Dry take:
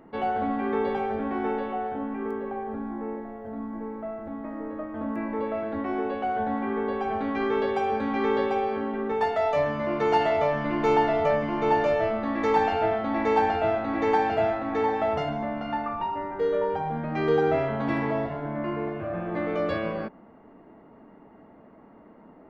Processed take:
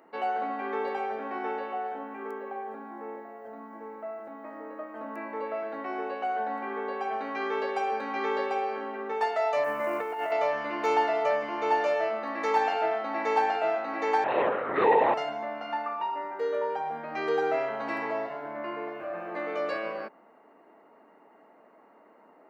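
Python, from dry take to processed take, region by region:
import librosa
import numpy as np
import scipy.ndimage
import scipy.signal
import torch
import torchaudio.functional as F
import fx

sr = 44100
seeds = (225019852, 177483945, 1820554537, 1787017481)

y = fx.chain(x, sr, fx.lowpass(hz=2700.0, slope=24),
    fx.quant_companded(bits=8),
    fx.over_compress(threshold_db=-27.0, ratio=-1.0), at=(9.64, 10.32))
y = fx.chain(y, sr, fx.room_flutter(wall_m=4.3, rt60_s=0.87),
    fx.lpc_vocoder(seeds[0], excitation='whisper', order=10), at=(14.24, 15.14))
y = scipy.signal.sosfilt(scipy.signal.butter(2, 470.0, 'highpass', fs=sr, output='sos'), y)
y = fx.high_shelf(y, sr, hz=4200.0, db=5.5)
y = fx.notch(y, sr, hz=3400.0, q=8.2)
y = y * librosa.db_to_amplitude(-1.5)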